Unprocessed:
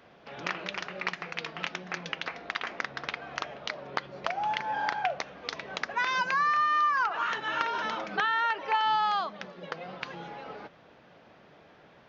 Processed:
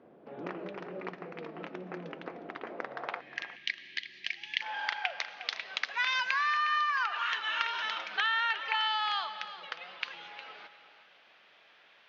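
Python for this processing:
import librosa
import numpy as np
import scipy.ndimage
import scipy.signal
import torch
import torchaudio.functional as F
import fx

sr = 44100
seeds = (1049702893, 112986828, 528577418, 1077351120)

p1 = fx.filter_sweep_bandpass(x, sr, from_hz=330.0, to_hz=3000.0, start_s=2.63, end_s=3.81, q=1.3)
p2 = fx.rev_freeverb(p1, sr, rt60_s=2.6, hf_ratio=0.75, predelay_ms=65, drr_db=15.0)
p3 = fx.spec_box(p2, sr, start_s=3.2, length_s=1.41, low_hz=400.0, high_hz=1600.0, gain_db=-25)
p4 = p3 + fx.echo_single(p3, sr, ms=359, db=-13.5, dry=0)
y = F.gain(torch.from_numpy(p4), 4.5).numpy()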